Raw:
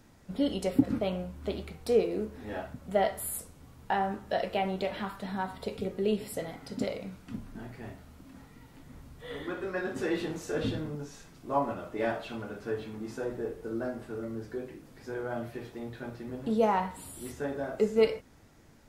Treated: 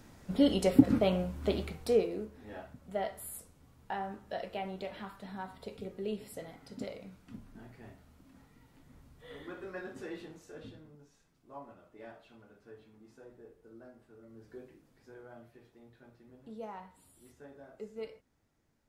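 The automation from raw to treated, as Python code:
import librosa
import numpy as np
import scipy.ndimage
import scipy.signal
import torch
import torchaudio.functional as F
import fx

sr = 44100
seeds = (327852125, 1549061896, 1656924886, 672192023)

y = fx.gain(x, sr, db=fx.line((1.64, 3.0), (2.34, -8.5), (9.75, -8.5), (10.8, -19.0), (14.21, -19.0), (14.57, -11.0), (15.51, -18.0)))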